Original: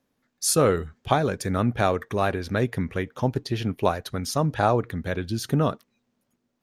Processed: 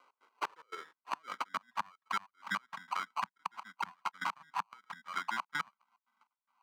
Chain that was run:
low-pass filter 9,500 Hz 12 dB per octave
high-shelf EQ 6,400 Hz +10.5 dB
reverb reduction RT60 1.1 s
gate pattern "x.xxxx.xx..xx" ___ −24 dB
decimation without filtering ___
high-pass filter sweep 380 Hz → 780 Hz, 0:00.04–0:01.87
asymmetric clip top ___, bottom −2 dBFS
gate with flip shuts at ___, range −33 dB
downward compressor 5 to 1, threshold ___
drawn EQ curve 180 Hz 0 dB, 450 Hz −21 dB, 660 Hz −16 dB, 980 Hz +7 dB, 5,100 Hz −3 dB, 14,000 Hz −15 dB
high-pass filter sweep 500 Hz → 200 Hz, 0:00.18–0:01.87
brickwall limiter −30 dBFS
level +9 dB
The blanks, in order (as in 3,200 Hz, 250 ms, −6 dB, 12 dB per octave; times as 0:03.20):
146 BPM, 25×, −19 dBFS, −15 dBFS, −44 dBFS